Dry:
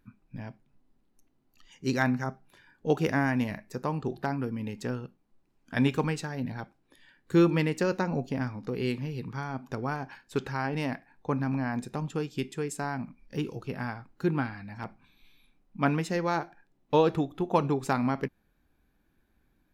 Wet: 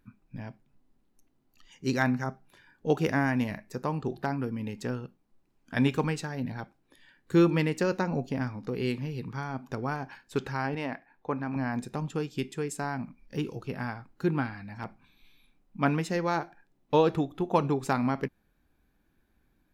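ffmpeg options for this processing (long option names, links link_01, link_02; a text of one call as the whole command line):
ffmpeg -i in.wav -filter_complex "[0:a]asettb=1/sr,asplit=3[link_01][link_02][link_03];[link_01]atrim=end=10.754[link_04];[link_02]atrim=start=10.75:end=11.56,asetpts=PTS-STARTPTS,afade=type=in:duration=0.004:curve=qsin,afade=type=out:start_time=0.806:duration=0.004:curve=qsin,bass=frequency=250:gain=-8,treble=frequency=4000:gain=-10[link_05];[link_03]atrim=start=11.556[link_06];[link_04][link_05]acrossfade=duration=0.004:curve1=hsin:curve2=qsin[link_07];[link_07][link_06]acrossfade=duration=0.004:curve1=qsin:curve2=hsin" out.wav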